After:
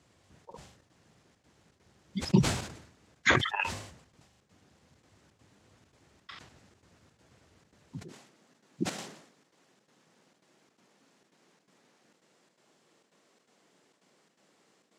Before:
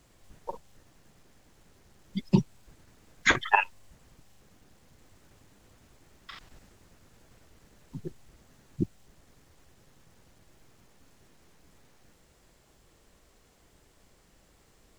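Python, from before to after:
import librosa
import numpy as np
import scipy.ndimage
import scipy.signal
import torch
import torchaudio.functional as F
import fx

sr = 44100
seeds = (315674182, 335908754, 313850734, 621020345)

y = fx.highpass(x, sr, hz=fx.steps((0.0, 70.0), (8.08, 180.0)), slope=24)
y = fx.step_gate(y, sr, bpm=167, pattern='xxxxx.xxx.', floor_db=-12.0, edge_ms=4.5)
y = scipy.signal.sosfilt(scipy.signal.butter(2, 7700.0, 'lowpass', fs=sr, output='sos'), y)
y = fx.sustainer(y, sr, db_per_s=76.0)
y = F.gain(torch.from_numpy(y), -2.0).numpy()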